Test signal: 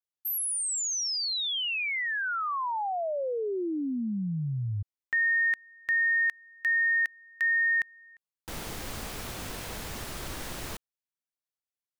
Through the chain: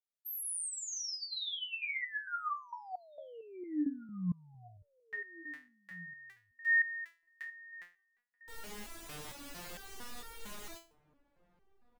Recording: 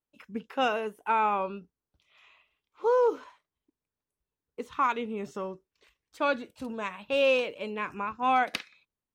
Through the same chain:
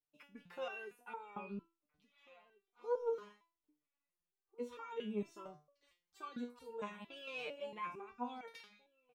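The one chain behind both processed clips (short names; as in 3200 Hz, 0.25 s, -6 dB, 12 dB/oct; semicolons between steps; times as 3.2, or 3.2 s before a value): bell 110 Hz -4 dB 0.44 oct; limiter -25.5 dBFS; outdoor echo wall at 290 m, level -21 dB; stepped resonator 4.4 Hz 150–460 Hz; gain +4 dB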